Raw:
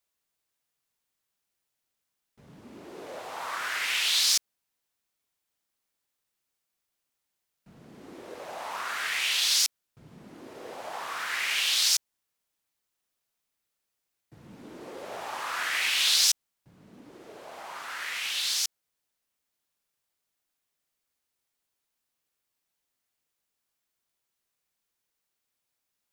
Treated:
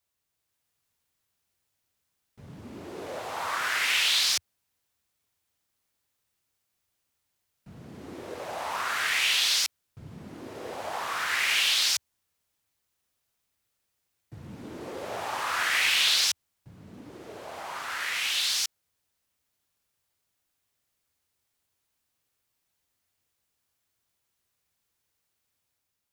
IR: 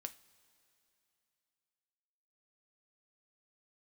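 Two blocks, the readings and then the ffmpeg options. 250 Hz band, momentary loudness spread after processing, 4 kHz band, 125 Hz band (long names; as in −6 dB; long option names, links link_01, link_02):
+4.5 dB, 21 LU, +1.0 dB, +8.5 dB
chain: -filter_complex "[0:a]acrossover=split=3500[link_01][link_02];[link_02]acompressor=threshold=-29dB:ratio=4:attack=1:release=60[link_03];[link_01][link_03]amix=inputs=2:normalize=0,equalizer=frequency=88:width_type=o:width=1.1:gain=10.5,dynaudnorm=framelen=110:gausssize=9:maxgain=3.5dB"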